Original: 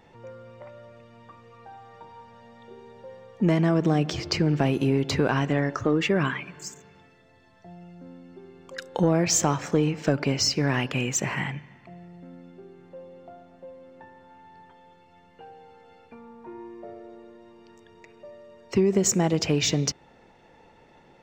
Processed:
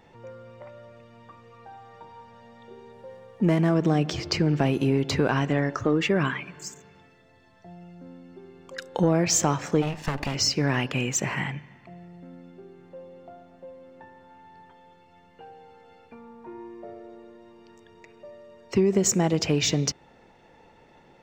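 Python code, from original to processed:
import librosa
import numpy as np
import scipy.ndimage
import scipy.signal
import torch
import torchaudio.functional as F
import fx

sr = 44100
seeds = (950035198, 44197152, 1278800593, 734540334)

y = fx.median_filter(x, sr, points=9, at=(2.92, 3.74))
y = fx.lower_of_two(y, sr, delay_ms=1.1, at=(9.81, 10.34), fade=0.02)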